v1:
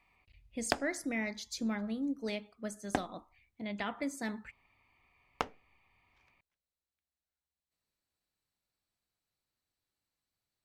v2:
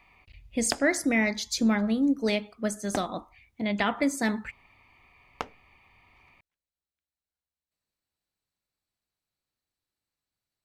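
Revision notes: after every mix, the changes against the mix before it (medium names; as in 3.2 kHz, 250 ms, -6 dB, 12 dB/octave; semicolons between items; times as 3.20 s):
speech +11.0 dB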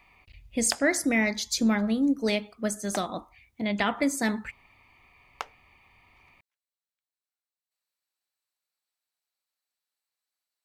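background: add high-pass 680 Hz; master: add treble shelf 6.7 kHz +5 dB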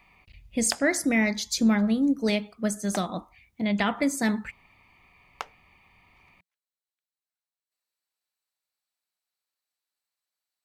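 master: add peaking EQ 180 Hz +7 dB 0.44 oct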